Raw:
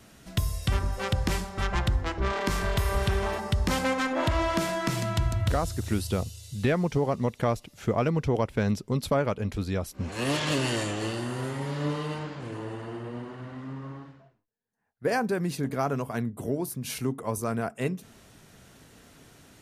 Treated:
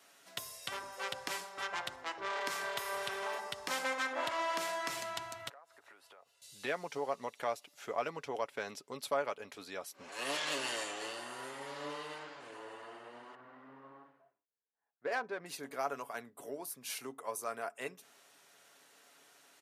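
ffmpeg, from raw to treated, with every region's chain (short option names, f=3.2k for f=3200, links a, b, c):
-filter_complex "[0:a]asettb=1/sr,asplit=3[a][b][c];[a]atrim=end=5.494[d];[b]atrim=start=5.49:end=6.42,asetpts=PTS-STARTPTS,afade=t=in:d=0.004:c=qsin,afade=t=out:st=0.926:d=0.004:c=qsin,acrossover=split=500 2100:gain=0.126 1 0.0891[e][f][g];[e][f][g]amix=inputs=3:normalize=0,acompressor=threshold=-45dB:ratio=10:attack=3.2:release=140:knee=1:detection=peak[h];[c]atrim=start=6.416[i];[d][h]acrossfade=d=0.004:c1=hsin:c2=qsin[j];[j][i]acrossfade=d=0.004:c1=qsin:c2=hsin,asettb=1/sr,asplit=3[k][l][m];[k]atrim=end=13.354[n];[l]atrim=start=13.35:end=15.46,asetpts=PTS-STARTPTS,afade=t=in:d=0.004:c=qsin,afade=t=out:st=2.106:d=0.004:c=qsin,lowpass=9.3k,adynamicsmooth=sensitivity=2.5:basefreq=1.9k[o];[m]atrim=start=15.456[p];[n][o]acrossfade=d=0.004:c1=hsin:c2=qsin[q];[q][p]acrossfade=d=0.004:c1=qsin:c2=hsin,highpass=610,aecho=1:1:7.1:0.31,volume=-6dB"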